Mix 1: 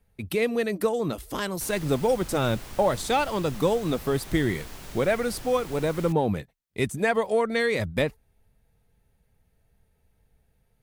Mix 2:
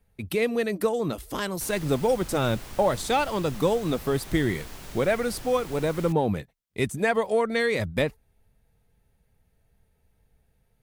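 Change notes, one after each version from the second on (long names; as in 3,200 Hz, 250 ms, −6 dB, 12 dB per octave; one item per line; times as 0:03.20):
nothing changed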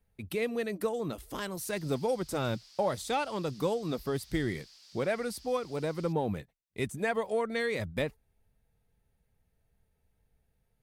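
speech −7.0 dB
background: add resonant band-pass 4,800 Hz, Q 4.9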